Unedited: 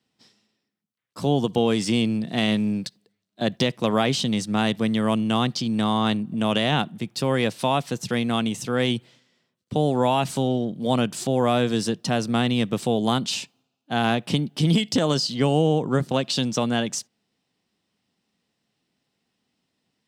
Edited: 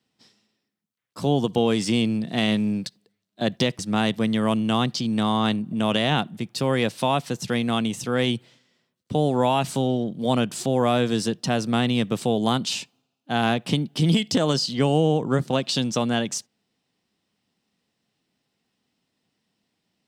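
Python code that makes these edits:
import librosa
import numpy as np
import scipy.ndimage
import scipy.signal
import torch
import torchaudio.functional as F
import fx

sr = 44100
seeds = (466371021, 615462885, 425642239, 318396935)

y = fx.edit(x, sr, fx.cut(start_s=3.79, length_s=0.61), tone=tone)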